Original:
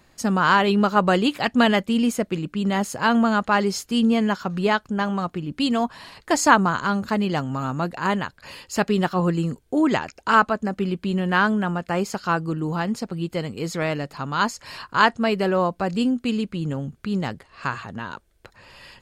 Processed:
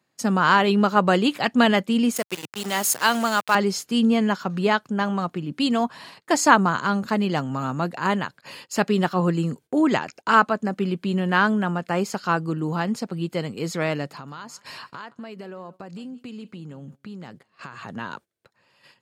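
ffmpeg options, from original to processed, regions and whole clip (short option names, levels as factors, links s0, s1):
-filter_complex "[0:a]asettb=1/sr,asplit=3[s0][s1][s2];[s0]atrim=end=2.164[s3];[s1]atrim=start=2.16:end=3.55,asetpts=PTS-STARTPTS,afade=t=in:d=0.004:c=qsin,afade=t=out:st=1.386:d=0.004:c=qsin,aemphasis=mode=production:type=riaa,aeval=exprs='val(0)*gte(abs(val(0)),0.0335)':c=same[s4];[s2]atrim=start=3.546[s5];[s3][s4]acrossfade=d=0.004:c1=hsin:c2=qsin[s6];[s6][s5]acrossfade=d=0.004:c1=qsin:c2=hsin,asettb=1/sr,asplit=3[s7][s8][s9];[s7]atrim=end=14.104[s10];[s8]atrim=start=14.1:end=17.83,asetpts=PTS-STARTPTS,afade=t=in:d=0.004:c=qsin,afade=t=out:st=3.726:d=0.004:c=qsin,acompressor=threshold=0.02:ratio=10:attack=3.2:release=140:knee=1:detection=peak,aecho=1:1:171:0.112,atrim=end_sample=164493[s11];[s9]atrim=start=17.826[s12];[s10][s11]acrossfade=d=0.004:c1=hsin:c2=qsin[s13];[s13][s12]acrossfade=d=0.004:c1=qsin:c2=hsin,highpass=f=120:w=0.5412,highpass=f=120:w=1.3066,agate=range=0.178:threshold=0.00708:ratio=16:detection=peak"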